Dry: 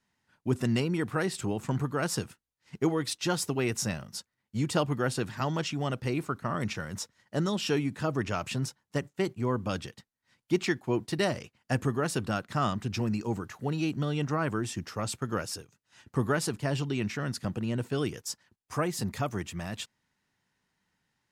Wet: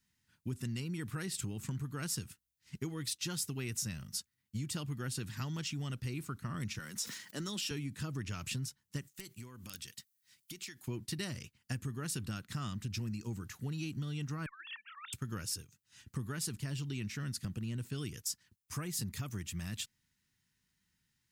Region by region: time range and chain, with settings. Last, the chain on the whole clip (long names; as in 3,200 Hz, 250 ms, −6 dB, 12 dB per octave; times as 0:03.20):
0:06.79–0:07.71: Bessel high-pass filter 280 Hz, order 4 + level that may fall only so fast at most 62 dB per second
0:09.01–0:10.88: spectral tilt +2.5 dB per octave + downward compressor, threshold −41 dBFS + wrap-around overflow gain 30.5 dB
0:14.46–0:15.13: three sine waves on the formant tracks + elliptic high-pass filter 910 Hz + compressor whose output falls as the input rises −39 dBFS, ratio −0.5
whole clip: guitar amp tone stack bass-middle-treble 6-0-2; downward compressor, threshold −50 dBFS; high-shelf EQ 11,000 Hz +9.5 dB; level +14.5 dB